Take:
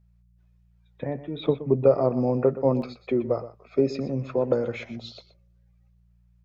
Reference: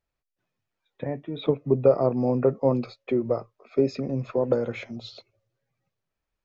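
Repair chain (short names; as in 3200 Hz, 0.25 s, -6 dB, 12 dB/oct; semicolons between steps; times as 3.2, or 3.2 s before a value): de-hum 58.5 Hz, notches 3; interpolate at 2.82, 2 ms; inverse comb 0.122 s -14.5 dB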